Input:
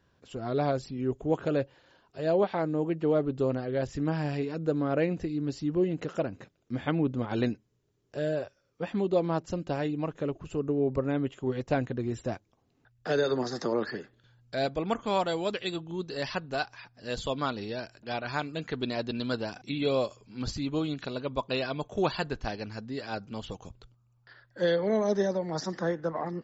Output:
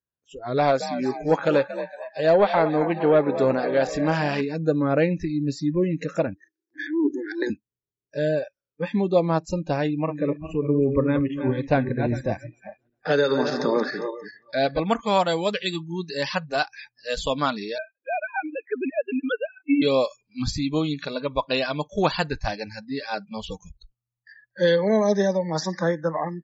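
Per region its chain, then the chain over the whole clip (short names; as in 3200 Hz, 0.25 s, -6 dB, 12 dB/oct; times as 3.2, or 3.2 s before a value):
0.57–4.41 overdrive pedal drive 11 dB, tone 4800 Hz, clips at -14 dBFS + frequency-shifting echo 0.231 s, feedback 60%, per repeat +46 Hz, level -11 dB
6.34–7.5 EQ curve 130 Hz 0 dB, 200 Hz -28 dB, 320 Hz +15 dB, 590 Hz -22 dB, 1100 Hz -26 dB, 1700 Hz +2 dB, 2500 Hz -19 dB, 5800 Hz +2 dB, 10000 Hz -16 dB + transient shaper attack -11 dB, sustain +10 dB + BPF 440–6500 Hz
9.87–14.8 regenerating reverse delay 0.202 s, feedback 52%, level -7 dB + LPF 4700 Hz
17.78–19.82 sine-wave speech + transient shaper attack +2 dB, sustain -8 dB
whole clip: spectral noise reduction 29 dB; dynamic EQ 370 Hz, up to -5 dB, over -43 dBFS, Q 3.9; AGC gain up to 7.5 dB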